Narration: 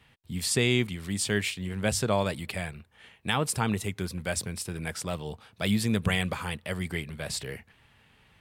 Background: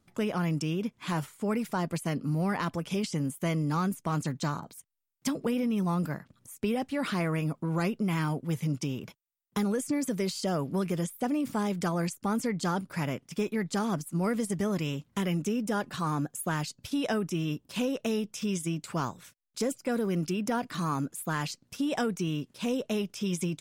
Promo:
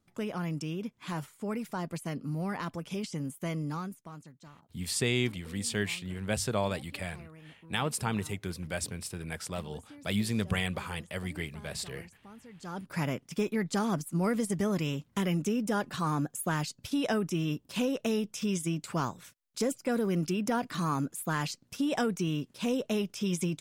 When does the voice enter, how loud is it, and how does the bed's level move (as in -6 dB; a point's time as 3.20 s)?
4.45 s, -4.0 dB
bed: 3.67 s -5 dB
4.35 s -22 dB
12.48 s -22 dB
12.93 s 0 dB